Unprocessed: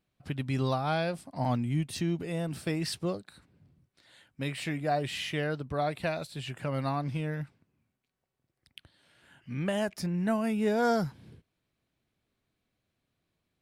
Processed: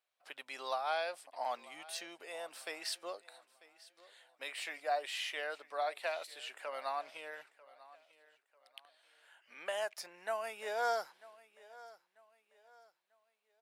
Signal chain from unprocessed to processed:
high-pass filter 580 Hz 24 dB per octave
repeating echo 943 ms, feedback 35%, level −20 dB
level −3.5 dB

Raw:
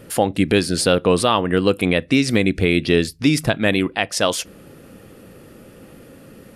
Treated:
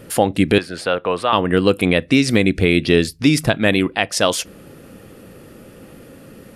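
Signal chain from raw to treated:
0:00.58–0:01.33: three-way crossover with the lows and the highs turned down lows −13 dB, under 550 Hz, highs −16 dB, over 2,800 Hz
level +2 dB

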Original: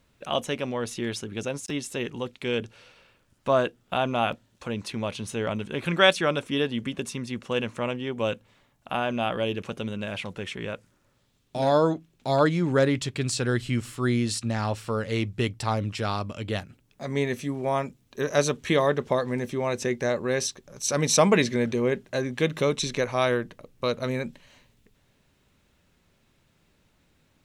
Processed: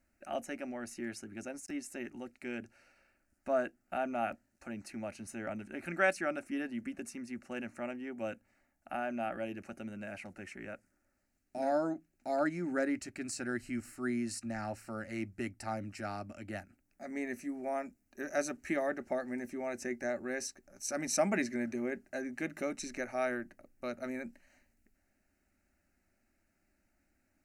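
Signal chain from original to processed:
phaser with its sweep stopped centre 690 Hz, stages 8
level −7.5 dB

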